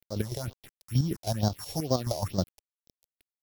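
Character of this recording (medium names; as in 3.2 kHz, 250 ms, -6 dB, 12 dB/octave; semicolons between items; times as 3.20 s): a buzz of ramps at a fixed pitch in blocks of 8 samples; chopped level 6.3 Hz, depth 65%, duty 35%; a quantiser's noise floor 8-bit, dither none; phasing stages 4, 2.2 Hz, lowest notch 210–2400 Hz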